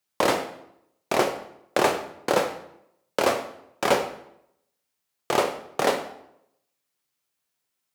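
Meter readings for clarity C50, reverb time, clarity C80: 9.5 dB, 0.80 s, 12.0 dB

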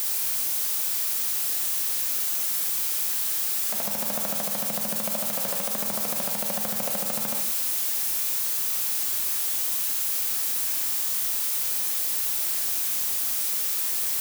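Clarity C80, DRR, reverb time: 8.5 dB, 2.5 dB, non-exponential decay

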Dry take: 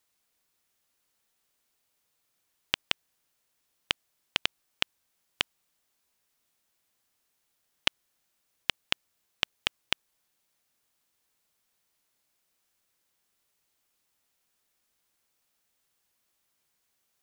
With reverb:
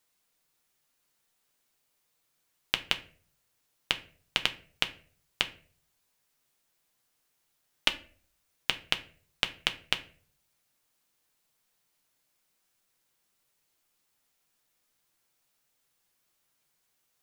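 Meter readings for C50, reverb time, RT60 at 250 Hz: 16.0 dB, 0.45 s, 0.60 s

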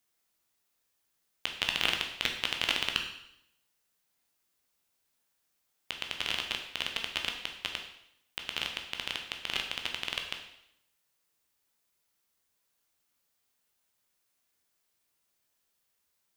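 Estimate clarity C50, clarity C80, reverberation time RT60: 7.0 dB, 9.0 dB, 0.75 s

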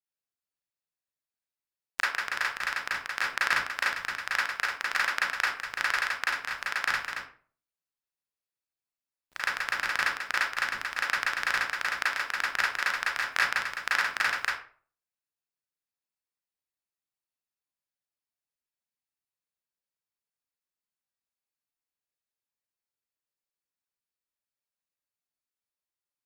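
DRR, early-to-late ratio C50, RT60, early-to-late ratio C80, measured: −7.0 dB, 2.0 dB, 0.45 s, 8.5 dB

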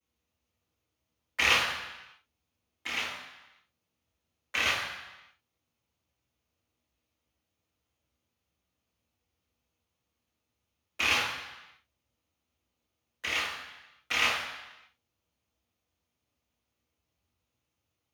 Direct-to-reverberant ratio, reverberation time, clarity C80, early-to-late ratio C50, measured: −13.5 dB, 1.0 s, 5.0 dB, 2.0 dB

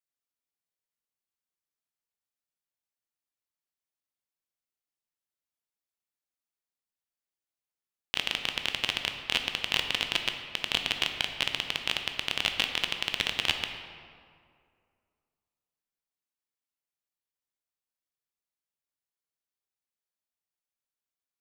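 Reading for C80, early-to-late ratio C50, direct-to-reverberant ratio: 7.5 dB, 6.5 dB, 5.0 dB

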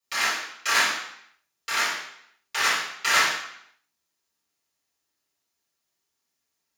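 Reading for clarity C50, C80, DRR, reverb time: 2.0 dB, 5.5 dB, −12.0 dB, 0.70 s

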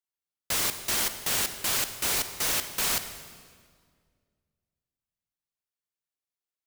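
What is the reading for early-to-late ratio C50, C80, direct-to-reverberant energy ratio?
10.0 dB, 11.0 dB, 9.5 dB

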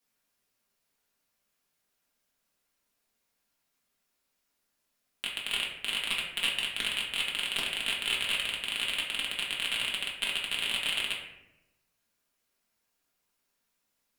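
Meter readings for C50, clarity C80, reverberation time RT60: 4.0 dB, 6.5 dB, 0.90 s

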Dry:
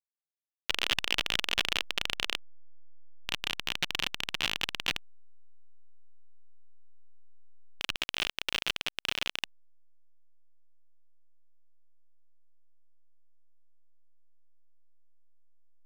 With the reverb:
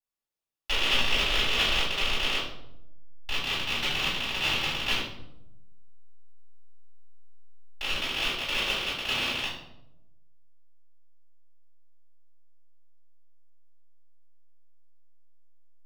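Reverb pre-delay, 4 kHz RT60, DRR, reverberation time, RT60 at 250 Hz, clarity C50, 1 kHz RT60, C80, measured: 3 ms, 0.55 s, −13.5 dB, 0.85 s, 1.2 s, 1.5 dB, 0.75 s, 6.0 dB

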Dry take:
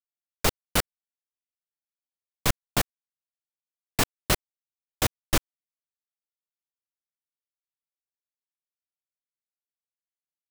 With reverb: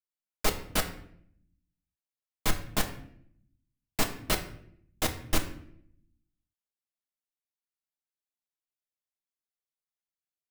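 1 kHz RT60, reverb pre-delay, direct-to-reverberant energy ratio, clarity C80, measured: 0.60 s, 3 ms, 3.0 dB, 14.0 dB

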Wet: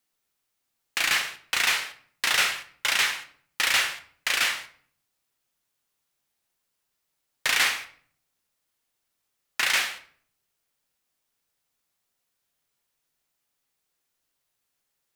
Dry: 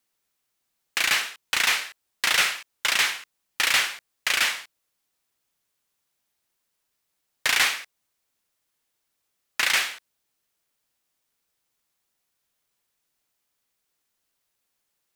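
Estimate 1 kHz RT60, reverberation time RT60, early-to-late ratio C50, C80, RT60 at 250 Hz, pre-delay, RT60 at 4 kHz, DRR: 0.50 s, 0.55 s, 13.0 dB, 16.5 dB, 0.80 s, 7 ms, 0.40 s, 6.5 dB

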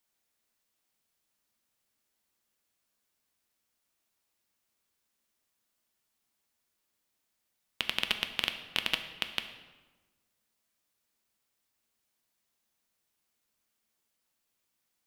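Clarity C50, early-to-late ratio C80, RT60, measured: 10.0 dB, 11.5 dB, 1.2 s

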